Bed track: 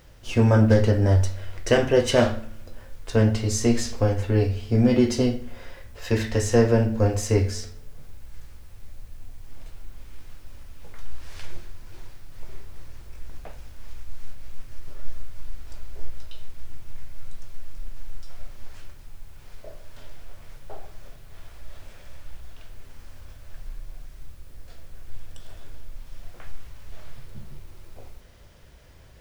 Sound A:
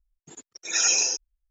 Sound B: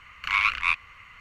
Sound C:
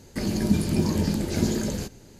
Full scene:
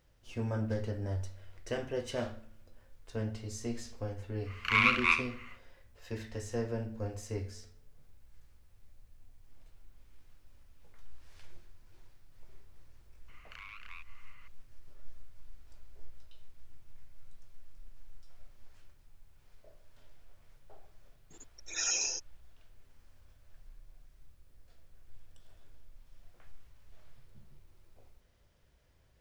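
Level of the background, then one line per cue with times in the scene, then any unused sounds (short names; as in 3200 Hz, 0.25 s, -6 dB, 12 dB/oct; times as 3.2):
bed track -17 dB
4.41 add B -3 dB, fades 0.10 s + flutter echo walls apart 10.9 m, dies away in 0.4 s
13.28 add B -12 dB + compressor, threshold -34 dBFS
21.03 add A -10.5 dB
not used: C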